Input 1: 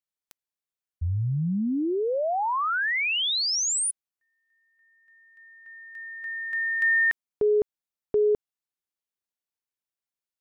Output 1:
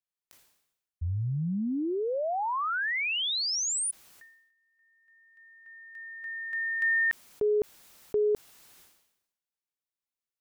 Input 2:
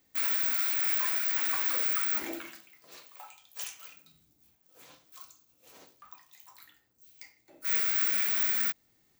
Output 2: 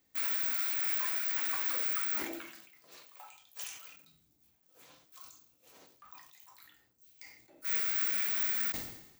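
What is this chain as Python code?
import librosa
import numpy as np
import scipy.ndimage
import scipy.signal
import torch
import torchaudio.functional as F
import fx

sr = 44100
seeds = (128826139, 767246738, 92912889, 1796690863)

y = fx.sustainer(x, sr, db_per_s=66.0)
y = F.gain(torch.from_numpy(y), -4.0).numpy()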